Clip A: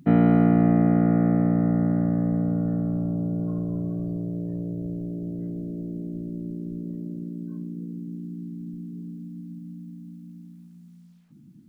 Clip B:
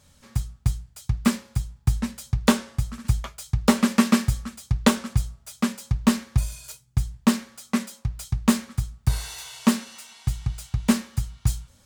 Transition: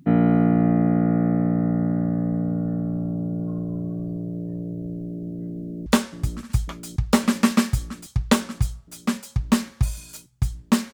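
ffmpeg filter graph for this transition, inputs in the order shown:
-filter_complex "[0:a]apad=whole_dur=10.93,atrim=end=10.93,atrim=end=5.862[a];[1:a]atrim=start=2.408:end=7.48[b];[a][b]acrossfade=d=0.004:c1=hsin:c2=hsin,asplit=2[c][d];[d]afade=t=in:st=5.57:d=0.01,afade=t=out:st=5.86:d=0.01,aecho=0:1:550|1100|1650|2200|2750|3300|3850|4400|4950|5500|6050|6600:0.562341|0.421756|0.316317|0.237238|0.177928|0.133446|0.100085|0.0750635|0.0562976|0.0422232|0.0316674|0.0237506[e];[c][e]amix=inputs=2:normalize=0"

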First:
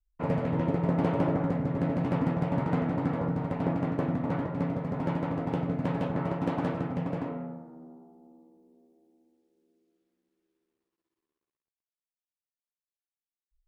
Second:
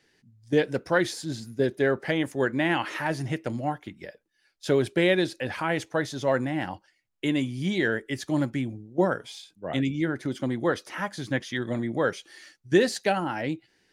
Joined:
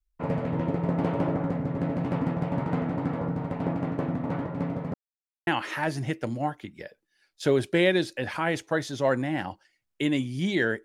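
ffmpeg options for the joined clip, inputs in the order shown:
-filter_complex "[0:a]apad=whole_dur=10.84,atrim=end=10.84,asplit=2[a][b];[a]atrim=end=4.94,asetpts=PTS-STARTPTS,afade=t=out:st=4.936:d=0.004:c=hsin[c];[b]atrim=start=4.94:end=5.47,asetpts=PTS-STARTPTS,volume=0[d];[1:a]atrim=start=2.7:end=8.07,asetpts=PTS-STARTPTS,afade=t=in:d=0.004:c=hsin[e];[c][d][e]concat=n=3:v=0:a=1"

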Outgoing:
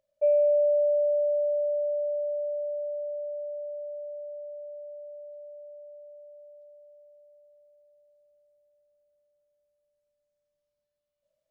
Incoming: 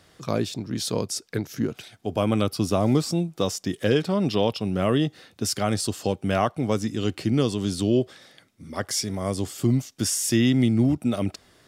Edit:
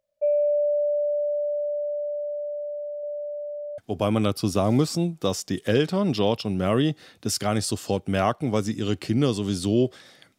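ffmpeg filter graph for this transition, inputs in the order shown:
-filter_complex "[0:a]asettb=1/sr,asplit=3[a][b][c];[a]atrim=end=3.034[d];[b]atrim=start=3.03:end=3.78,asetpts=PTS-STARTPTS,afade=t=in:d=0.004:c=qsin,afade=t=out:st=0.746:d=0.004:c=qsin,equalizer=f=500:t=o:w=0.53:g=4[e];[c]atrim=start=3.776[f];[d][e]acrossfade=d=0.004:c1=hsin:c2=qsin[g];[g][f]acrossfade=d=0.004:c1=qsin:c2=hsin,apad=whole_dur=10.38,atrim=end=10.38,atrim=end=3.782[h];[1:a]atrim=start=1.938:end=8.54[i];[h][i]acrossfade=d=0.004:c1=hsin:c2=hsin"

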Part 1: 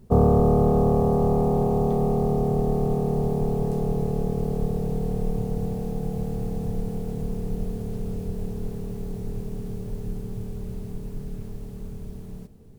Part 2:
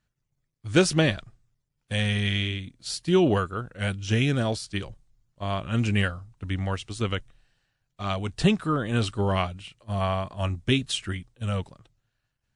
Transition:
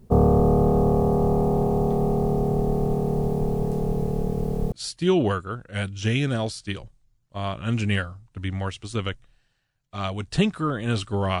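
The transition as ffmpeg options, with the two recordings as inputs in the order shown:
-filter_complex "[0:a]apad=whole_dur=11.4,atrim=end=11.4,atrim=end=4.722[a];[1:a]atrim=start=2.778:end=9.46[b];[a][b]acrossfade=d=0.004:c1=hsin:c2=hsin"

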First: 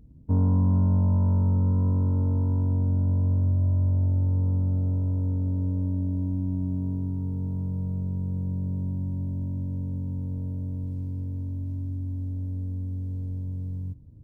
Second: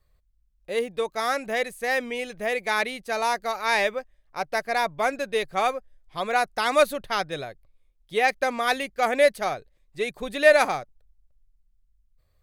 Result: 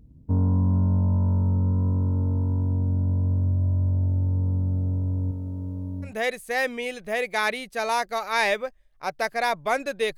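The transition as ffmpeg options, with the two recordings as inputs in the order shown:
-filter_complex "[0:a]asettb=1/sr,asplit=3[a][b][c];[a]atrim=end=5.314[d];[b]atrim=start=5.31:end=6.14,asetpts=PTS-STARTPTS,afade=t=in:d=0.004:c=qsin,afade=t=out:st=0.826:d=0.004:c=qsin,lowshelf=f=410:g=-6[e];[c]atrim=start=6.136[f];[d][e]acrossfade=d=0.004:c1=hsin:c2=qsin[g];[g][f]acrossfade=d=0.004:c1=qsin:c2=hsin,apad=whole_dur=10.17,atrim=end=10.17,atrim=end=6.14,asetpts=PTS-STARTPTS[h];[1:a]atrim=start=1.35:end=5.5,asetpts=PTS-STARTPTS[i];[h][i]acrossfade=d=0.12:c1=tri:c2=tri"

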